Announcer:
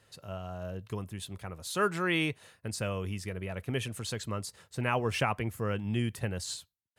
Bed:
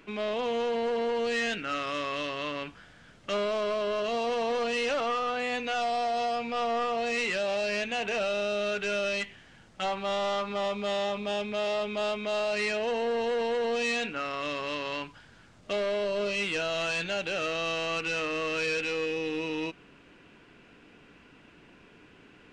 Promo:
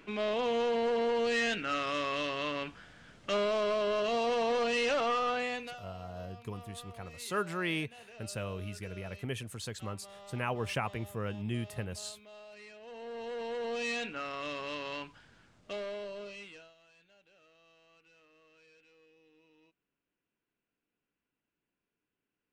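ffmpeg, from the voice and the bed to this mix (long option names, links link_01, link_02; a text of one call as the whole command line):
ffmpeg -i stem1.wav -i stem2.wav -filter_complex "[0:a]adelay=5550,volume=-4.5dB[link_01];[1:a]volume=16dB,afade=type=out:start_time=5.33:duration=0.47:silence=0.0841395,afade=type=in:start_time=12.8:duration=1.1:silence=0.141254,afade=type=out:start_time=15.24:duration=1.51:silence=0.0375837[link_02];[link_01][link_02]amix=inputs=2:normalize=0" out.wav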